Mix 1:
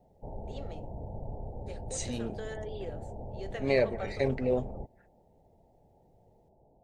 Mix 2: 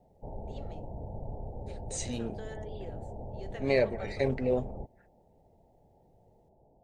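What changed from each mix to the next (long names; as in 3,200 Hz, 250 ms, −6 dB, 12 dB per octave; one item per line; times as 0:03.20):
first voice −4.5 dB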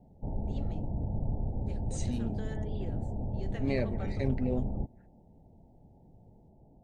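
second voice −7.0 dB
master: add low shelf with overshoot 350 Hz +7.5 dB, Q 1.5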